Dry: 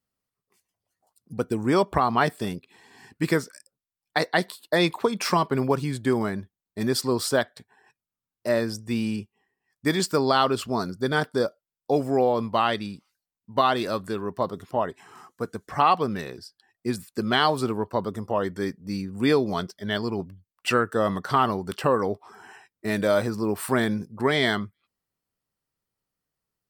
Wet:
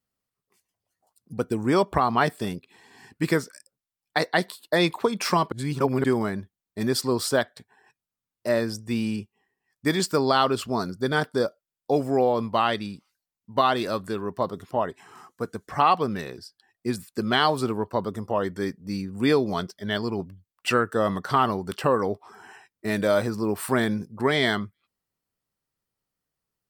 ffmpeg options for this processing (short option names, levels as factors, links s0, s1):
-filter_complex "[0:a]asplit=3[s0][s1][s2];[s0]atrim=end=5.522[s3];[s1]atrim=start=5.518:end=6.042,asetpts=PTS-STARTPTS,areverse[s4];[s2]atrim=start=6.038[s5];[s3][s4]acrossfade=d=0.004:c1=hsin:c2=hsin[s6];[s6][s5]acrossfade=d=0.004:c1=hsin:c2=hsin"